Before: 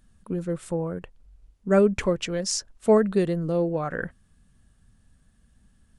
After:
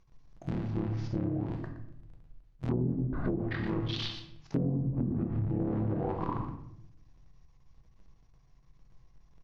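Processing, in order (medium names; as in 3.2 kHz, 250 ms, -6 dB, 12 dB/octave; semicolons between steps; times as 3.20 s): cycle switcher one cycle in 3, muted; treble shelf 8.5 kHz -12 dB; delay 75 ms -12 dB; wide varispeed 0.634×; reverberation RT60 0.75 s, pre-delay 6 ms, DRR 3.5 dB; low-pass that closes with the level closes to 360 Hz, closed at -16.5 dBFS; compression 6:1, threshold -24 dBFS, peak gain reduction 11 dB; trim -3 dB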